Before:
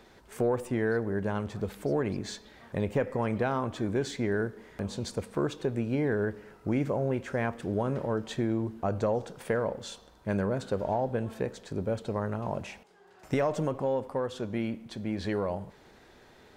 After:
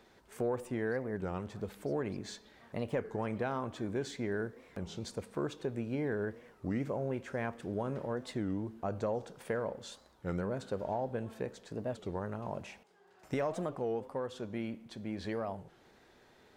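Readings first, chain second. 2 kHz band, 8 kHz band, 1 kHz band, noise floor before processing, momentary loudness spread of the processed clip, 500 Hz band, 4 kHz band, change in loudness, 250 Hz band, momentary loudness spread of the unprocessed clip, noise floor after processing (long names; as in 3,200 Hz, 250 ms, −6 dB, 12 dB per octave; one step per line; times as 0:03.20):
−6.0 dB, −6.0 dB, −6.0 dB, −57 dBFS, 8 LU, −6.0 dB, −6.0 dB, −6.5 dB, −6.5 dB, 8 LU, −63 dBFS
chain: low-shelf EQ 78 Hz −5.5 dB
wow of a warped record 33 1/3 rpm, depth 250 cents
level −6 dB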